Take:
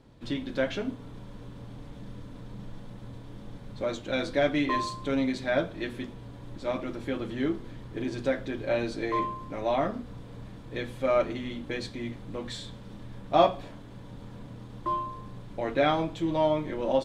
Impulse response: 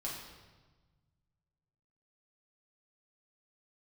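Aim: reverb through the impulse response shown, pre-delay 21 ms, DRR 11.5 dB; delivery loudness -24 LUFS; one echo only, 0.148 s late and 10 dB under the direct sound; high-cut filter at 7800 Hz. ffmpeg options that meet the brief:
-filter_complex "[0:a]lowpass=7.8k,aecho=1:1:148:0.316,asplit=2[a][b];[1:a]atrim=start_sample=2205,adelay=21[c];[b][c]afir=irnorm=-1:irlink=0,volume=-12.5dB[d];[a][d]amix=inputs=2:normalize=0,volume=5.5dB"

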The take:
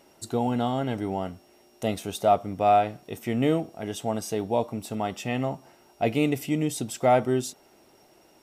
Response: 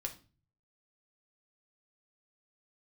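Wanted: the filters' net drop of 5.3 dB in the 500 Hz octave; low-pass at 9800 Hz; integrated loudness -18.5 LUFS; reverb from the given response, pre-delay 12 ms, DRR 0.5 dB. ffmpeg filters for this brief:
-filter_complex "[0:a]lowpass=9.8k,equalizer=f=500:t=o:g=-7.5,asplit=2[a][b];[1:a]atrim=start_sample=2205,adelay=12[c];[b][c]afir=irnorm=-1:irlink=0,volume=0.5dB[d];[a][d]amix=inputs=2:normalize=0,volume=9dB"

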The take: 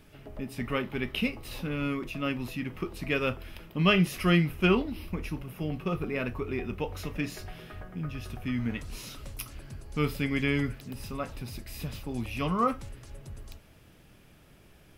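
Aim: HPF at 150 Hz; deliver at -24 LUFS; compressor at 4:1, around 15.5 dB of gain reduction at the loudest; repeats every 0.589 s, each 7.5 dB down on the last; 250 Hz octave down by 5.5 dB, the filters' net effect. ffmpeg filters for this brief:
-af "highpass=150,equalizer=f=250:t=o:g=-6.5,acompressor=threshold=-40dB:ratio=4,aecho=1:1:589|1178|1767|2356|2945:0.422|0.177|0.0744|0.0312|0.0131,volume=19dB"

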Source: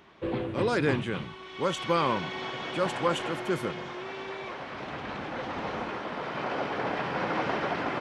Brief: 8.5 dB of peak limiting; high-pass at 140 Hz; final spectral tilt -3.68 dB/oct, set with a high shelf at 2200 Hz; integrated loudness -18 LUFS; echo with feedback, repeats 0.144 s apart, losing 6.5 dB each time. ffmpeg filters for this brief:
-af "highpass=140,highshelf=f=2.2k:g=8,alimiter=limit=-19dB:level=0:latency=1,aecho=1:1:144|288|432|576|720|864:0.473|0.222|0.105|0.0491|0.0231|0.0109,volume=12dB"

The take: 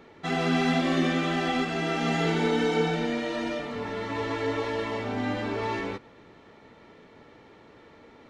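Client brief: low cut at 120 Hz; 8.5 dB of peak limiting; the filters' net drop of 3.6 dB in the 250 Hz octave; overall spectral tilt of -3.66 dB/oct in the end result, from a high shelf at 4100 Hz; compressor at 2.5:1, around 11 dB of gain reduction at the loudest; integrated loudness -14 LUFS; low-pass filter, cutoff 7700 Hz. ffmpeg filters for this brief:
-af "highpass=120,lowpass=7.7k,equalizer=f=250:t=o:g=-4,highshelf=f=4.1k:g=-4,acompressor=threshold=-40dB:ratio=2.5,volume=29.5dB,alimiter=limit=-5dB:level=0:latency=1"

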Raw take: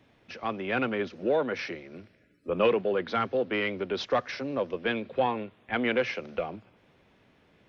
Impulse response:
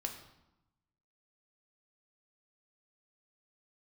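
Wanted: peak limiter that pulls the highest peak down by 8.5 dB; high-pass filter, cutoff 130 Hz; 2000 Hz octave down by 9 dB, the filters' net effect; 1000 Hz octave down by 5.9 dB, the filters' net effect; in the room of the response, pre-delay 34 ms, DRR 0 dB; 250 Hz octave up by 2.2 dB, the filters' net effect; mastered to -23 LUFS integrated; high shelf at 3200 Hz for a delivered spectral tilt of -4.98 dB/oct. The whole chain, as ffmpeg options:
-filter_complex "[0:a]highpass=130,equalizer=f=250:t=o:g=3.5,equalizer=f=1k:t=o:g=-6,equalizer=f=2k:t=o:g=-8,highshelf=f=3.2k:g=-5,alimiter=limit=-21.5dB:level=0:latency=1,asplit=2[a][b];[1:a]atrim=start_sample=2205,adelay=34[c];[b][c]afir=irnorm=-1:irlink=0,volume=0dB[d];[a][d]amix=inputs=2:normalize=0,volume=7dB"

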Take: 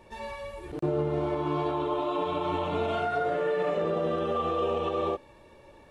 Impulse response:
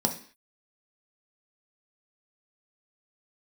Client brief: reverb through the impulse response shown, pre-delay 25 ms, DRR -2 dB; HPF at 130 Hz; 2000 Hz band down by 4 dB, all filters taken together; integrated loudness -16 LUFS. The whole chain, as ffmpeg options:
-filter_complex "[0:a]highpass=130,equalizer=f=2k:t=o:g=-6,asplit=2[a][b];[1:a]atrim=start_sample=2205,adelay=25[c];[b][c]afir=irnorm=-1:irlink=0,volume=-7dB[d];[a][d]amix=inputs=2:normalize=0,volume=7dB"

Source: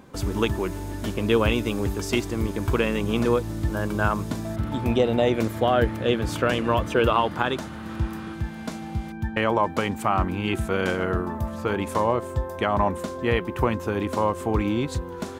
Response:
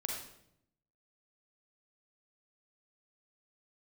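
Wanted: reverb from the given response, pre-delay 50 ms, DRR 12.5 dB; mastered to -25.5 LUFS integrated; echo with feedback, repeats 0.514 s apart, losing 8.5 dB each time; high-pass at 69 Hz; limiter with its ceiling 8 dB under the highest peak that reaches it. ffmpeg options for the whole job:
-filter_complex "[0:a]highpass=69,alimiter=limit=-14dB:level=0:latency=1,aecho=1:1:514|1028|1542|2056:0.376|0.143|0.0543|0.0206,asplit=2[a][b];[1:a]atrim=start_sample=2205,adelay=50[c];[b][c]afir=irnorm=-1:irlink=0,volume=-14dB[d];[a][d]amix=inputs=2:normalize=0,volume=1dB"

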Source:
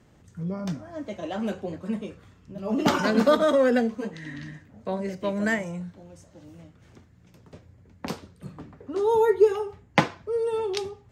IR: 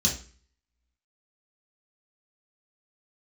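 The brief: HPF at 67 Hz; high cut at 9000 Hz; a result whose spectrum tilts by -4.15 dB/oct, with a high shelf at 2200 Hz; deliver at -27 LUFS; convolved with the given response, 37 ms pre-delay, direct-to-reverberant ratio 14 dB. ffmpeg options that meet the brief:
-filter_complex "[0:a]highpass=67,lowpass=9k,highshelf=f=2.2k:g=5,asplit=2[a][b];[1:a]atrim=start_sample=2205,adelay=37[c];[b][c]afir=irnorm=-1:irlink=0,volume=-22.5dB[d];[a][d]amix=inputs=2:normalize=0,volume=-2dB"

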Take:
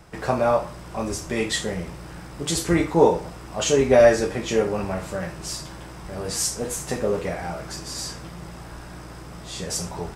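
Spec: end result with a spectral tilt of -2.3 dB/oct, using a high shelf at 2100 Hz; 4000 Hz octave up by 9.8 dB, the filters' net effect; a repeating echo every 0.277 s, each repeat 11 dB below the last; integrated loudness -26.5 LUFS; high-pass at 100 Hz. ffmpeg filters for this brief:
-af "highpass=100,highshelf=f=2.1k:g=7.5,equalizer=f=4k:t=o:g=5,aecho=1:1:277|554|831:0.282|0.0789|0.0221,volume=-6.5dB"

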